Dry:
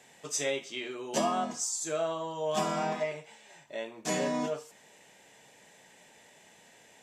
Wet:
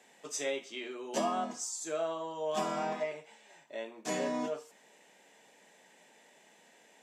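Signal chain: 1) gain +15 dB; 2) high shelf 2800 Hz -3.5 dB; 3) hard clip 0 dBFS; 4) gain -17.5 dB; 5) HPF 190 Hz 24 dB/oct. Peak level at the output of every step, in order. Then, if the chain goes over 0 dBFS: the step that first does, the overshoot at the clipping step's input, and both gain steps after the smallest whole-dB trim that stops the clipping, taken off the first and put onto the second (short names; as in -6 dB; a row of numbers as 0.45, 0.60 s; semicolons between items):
-2.0, -3.0, -3.0, -20.5, -20.5 dBFS; no overload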